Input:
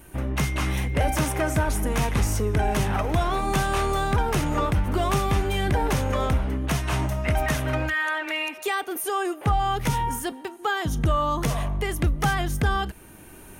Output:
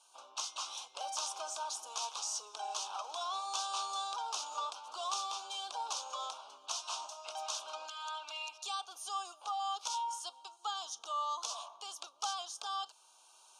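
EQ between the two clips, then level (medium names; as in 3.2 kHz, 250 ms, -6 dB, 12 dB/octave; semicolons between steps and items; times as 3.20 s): high-pass 1.1 kHz 24 dB/octave; Butterworth band-stop 1.9 kHz, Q 0.62; low-pass 6.6 kHz 24 dB/octave; +1.0 dB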